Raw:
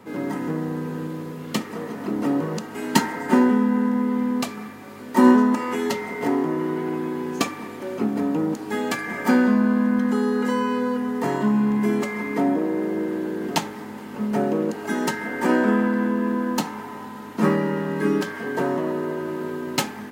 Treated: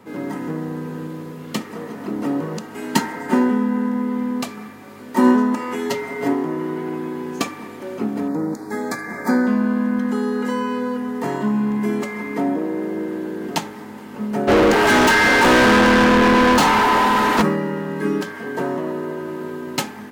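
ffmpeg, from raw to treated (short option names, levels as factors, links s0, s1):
-filter_complex "[0:a]asettb=1/sr,asplit=3[s0][s1][s2];[s0]atrim=end=5.904[s3];[s1]atrim=start=5.9:end=6.33,asetpts=PTS-STARTPTS,afade=t=in:d=0.004:c=qsin,afade=t=out:st=0.426:d=0.004:c=qsin,aecho=1:1:7.3:0.65,atrim=end_sample=18963[s4];[s2]atrim=start=6.326[s5];[s3][s4]acrossfade=d=0.004:c1=hsin:c2=qsin[s6];[s6][s5]acrossfade=d=0.004:c1=qsin:c2=hsin,asettb=1/sr,asplit=3[s7][s8][s9];[s7]atrim=end=8.284[s10];[s8]atrim=start=8.28:end=9.47,asetpts=PTS-STARTPTS,afade=t=in:d=0.004:c=qsin,afade=t=out:st=1.186:d=0.004:c=qsin,asuperstop=centerf=2900:order=4:qfactor=1.6[s11];[s9]atrim=start=9.466[s12];[s10][s11]acrossfade=d=0.004:c1=hsin:c2=qsin[s13];[s13][s12]acrossfade=d=0.004:c1=qsin:c2=hsin,asplit=3[s14][s15][s16];[s14]afade=t=out:st=14.47:d=0.02[s17];[s15]asplit=2[s18][s19];[s19]highpass=f=720:p=1,volume=63.1,asoftclip=type=tanh:threshold=0.473[s20];[s18][s20]amix=inputs=2:normalize=0,lowpass=f=3700:p=1,volume=0.501,afade=t=in:st=14.47:d=0.02,afade=t=out:st=17.41:d=0.02[s21];[s16]afade=t=in:st=17.41:d=0.02[s22];[s17][s21][s22]amix=inputs=3:normalize=0"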